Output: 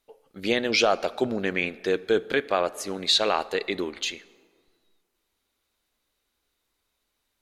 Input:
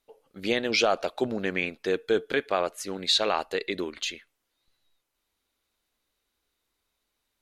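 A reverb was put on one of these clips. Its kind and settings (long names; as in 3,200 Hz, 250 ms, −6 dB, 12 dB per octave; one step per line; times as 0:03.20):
dense smooth reverb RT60 1.9 s, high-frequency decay 0.5×, DRR 18 dB
level +2 dB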